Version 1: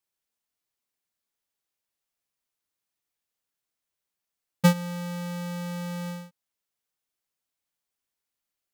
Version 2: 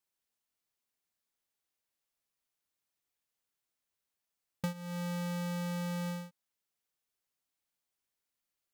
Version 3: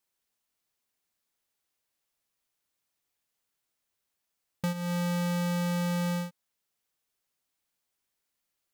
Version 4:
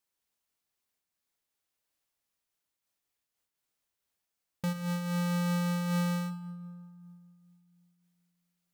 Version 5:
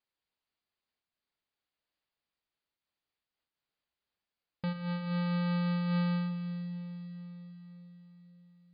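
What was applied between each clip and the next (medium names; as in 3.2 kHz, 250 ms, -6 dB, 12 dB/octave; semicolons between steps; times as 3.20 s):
compression 10:1, threshold -32 dBFS, peak gain reduction 16.5 dB; trim -2 dB
in parallel at +1.5 dB: peak limiter -39 dBFS, peak gain reduction 10.5 dB; on the sum: waveshaping leveller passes 1
on a send at -11 dB: reverberation RT60 2.1 s, pre-delay 8 ms; on the sum: random flutter of the level, depth 60%
brick-wall FIR low-pass 5 kHz; on a send: echo that smears into a reverb 453 ms, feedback 49%, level -13 dB; on the sum: trim -2 dB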